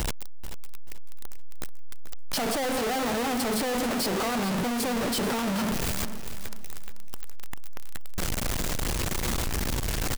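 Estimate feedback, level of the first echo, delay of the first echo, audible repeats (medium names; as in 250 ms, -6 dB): 29%, -12.0 dB, 436 ms, 3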